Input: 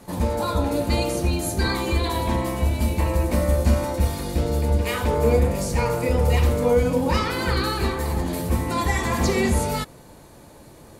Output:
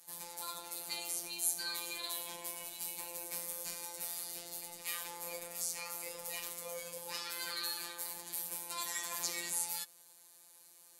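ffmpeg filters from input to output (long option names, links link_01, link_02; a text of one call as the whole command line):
ffmpeg -i in.wav -af "highpass=56,aderivative,afftfilt=real='hypot(re,im)*cos(PI*b)':imag='0':win_size=1024:overlap=0.75,volume=-1dB" out.wav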